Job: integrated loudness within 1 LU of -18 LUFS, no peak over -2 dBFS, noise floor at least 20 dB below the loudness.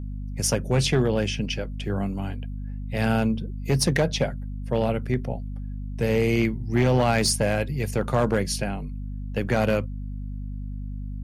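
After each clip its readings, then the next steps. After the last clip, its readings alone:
clipped 0.9%; flat tops at -14.0 dBFS; hum 50 Hz; harmonics up to 250 Hz; hum level -30 dBFS; loudness -25.0 LUFS; peak -14.0 dBFS; loudness target -18.0 LUFS
-> clip repair -14 dBFS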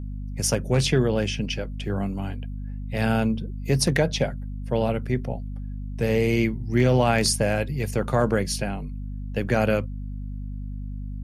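clipped 0.0%; hum 50 Hz; harmonics up to 250 Hz; hum level -30 dBFS
-> de-hum 50 Hz, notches 5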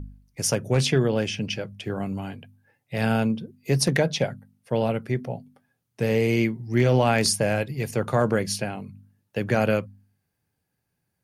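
hum none; loudness -24.5 LUFS; peak -7.0 dBFS; loudness target -18.0 LUFS
-> gain +6.5 dB; limiter -2 dBFS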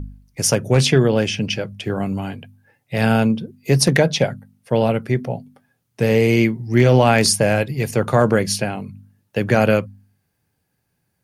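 loudness -18.0 LUFS; peak -2.0 dBFS; noise floor -72 dBFS

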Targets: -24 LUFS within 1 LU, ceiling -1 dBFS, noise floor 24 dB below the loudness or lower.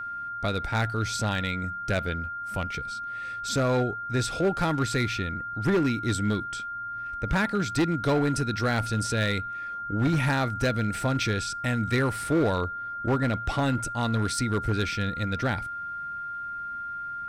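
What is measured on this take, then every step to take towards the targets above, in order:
clipped 1.3%; flat tops at -18.5 dBFS; steady tone 1400 Hz; tone level -32 dBFS; loudness -27.5 LUFS; peak -18.5 dBFS; loudness target -24.0 LUFS
-> clip repair -18.5 dBFS; notch 1400 Hz, Q 30; gain +3.5 dB

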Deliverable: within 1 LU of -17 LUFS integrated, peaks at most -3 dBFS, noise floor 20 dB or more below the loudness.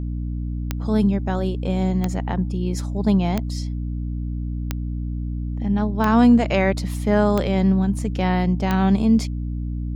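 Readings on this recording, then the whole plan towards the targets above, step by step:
clicks 7; hum 60 Hz; harmonics up to 300 Hz; hum level -23 dBFS; loudness -21.5 LUFS; peak -4.0 dBFS; loudness target -17.0 LUFS
-> de-click; notches 60/120/180/240/300 Hz; gain +4.5 dB; limiter -3 dBFS

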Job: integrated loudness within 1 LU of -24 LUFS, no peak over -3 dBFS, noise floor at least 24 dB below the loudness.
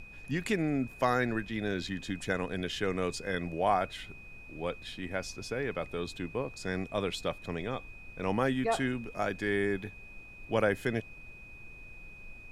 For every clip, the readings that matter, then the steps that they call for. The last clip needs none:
steady tone 2500 Hz; tone level -49 dBFS; noise floor -50 dBFS; noise floor target -57 dBFS; loudness -33.0 LUFS; peak -12.5 dBFS; loudness target -24.0 LUFS
-> notch 2500 Hz, Q 30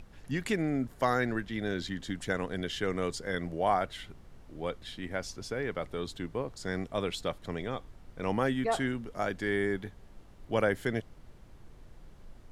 steady tone none; noise floor -54 dBFS; noise floor target -57 dBFS
-> noise print and reduce 6 dB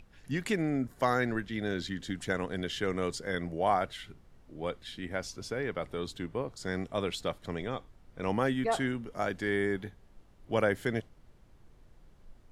noise floor -59 dBFS; loudness -33.0 LUFS; peak -13.0 dBFS; loudness target -24.0 LUFS
-> gain +9 dB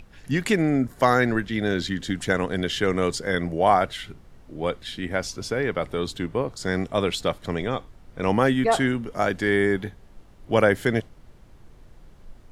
loudness -24.0 LUFS; peak -4.0 dBFS; noise floor -50 dBFS

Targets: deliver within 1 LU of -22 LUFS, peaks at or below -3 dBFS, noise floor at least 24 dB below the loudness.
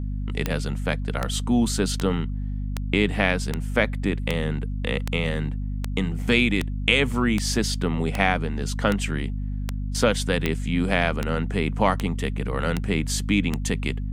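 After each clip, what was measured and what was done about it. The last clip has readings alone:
clicks 18; hum 50 Hz; harmonics up to 250 Hz; hum level -25 dBFS; loudness -24.5 LUFS; peak -2.0 dBFS; loudness target -22.0 LUFS
-> de-click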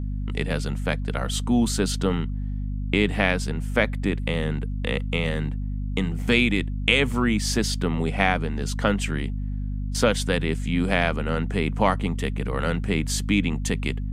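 clicks 0; hum 50 Hz; harmonics up to 250 Hz; hum level -25 dBFS
-> notches 50/100/150/200/250 Hz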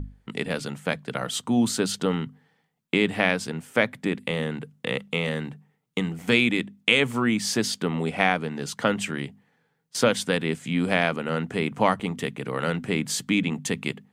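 hum none; loudness -25.5 LUFS; peak -3.0 dBFS; loudness target -22.0 LUFS
-> gain +3.5 dB; limiter -3 dBFS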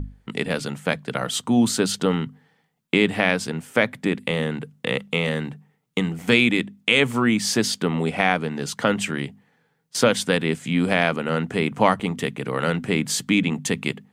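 loudness -22.5 LUFS; peak -3.0 dBFS; noise floor -68 dBFS

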